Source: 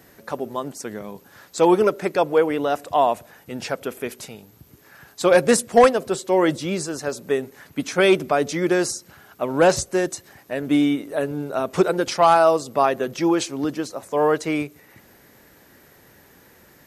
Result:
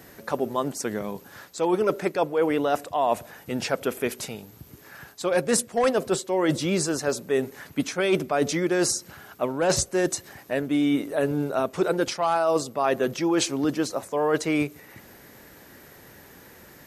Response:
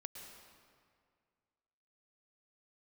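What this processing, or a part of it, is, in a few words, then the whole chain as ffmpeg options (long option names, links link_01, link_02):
compression on the reversed sound: -af "areverse,acompressor=threshold=-22dB:ratio=12,areverse,volume=3dB"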